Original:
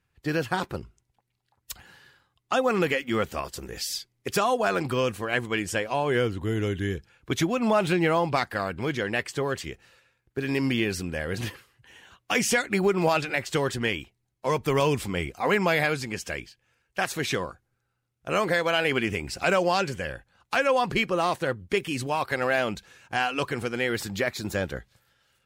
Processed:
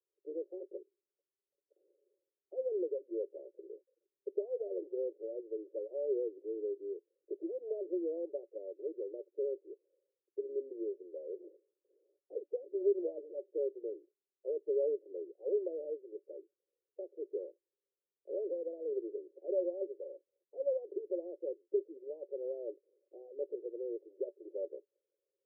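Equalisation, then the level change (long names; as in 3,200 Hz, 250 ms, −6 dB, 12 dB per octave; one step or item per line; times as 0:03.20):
Butterworth high-pass 330 Hz 96 dB per octave
Chebyshev low-pass with heavy ripple 590 Hz, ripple 6 dB
−5.0 dB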